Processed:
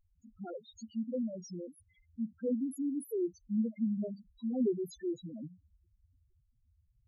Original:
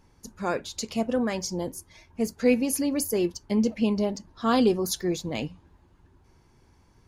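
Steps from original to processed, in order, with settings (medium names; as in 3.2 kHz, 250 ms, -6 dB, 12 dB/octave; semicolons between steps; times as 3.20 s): integer overflow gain 12 dB; loudest bins only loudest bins 2; trim -6.5 dB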